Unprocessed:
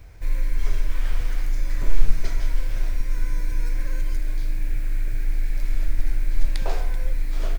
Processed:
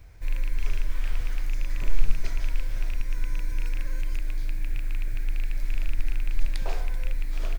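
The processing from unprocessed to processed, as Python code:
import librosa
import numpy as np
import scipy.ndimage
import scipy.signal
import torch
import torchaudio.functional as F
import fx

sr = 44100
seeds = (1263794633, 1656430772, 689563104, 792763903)

y = fx.rattle_buzz(x, sr, strikes_db=-21.0, level_db=-23.0)
y = fx.peak_eq(y, sr, hz=430.0, db=-2.0, octaves=2.0)
y = F.gain(torch.from_numpy(y), -4.0).numpy()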